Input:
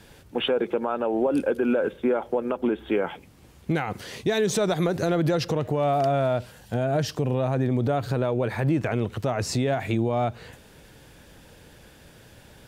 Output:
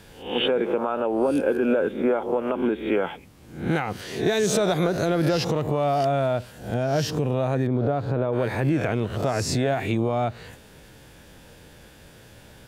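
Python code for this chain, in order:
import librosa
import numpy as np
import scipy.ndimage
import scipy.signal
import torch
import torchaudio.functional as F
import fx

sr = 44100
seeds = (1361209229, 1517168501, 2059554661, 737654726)

y = fx.spec_swells(x, sr, rise_s=0.49)
y = fx.lowpass(y, sr, hz=1200.0, slope=6, at=(7.67, 8.33))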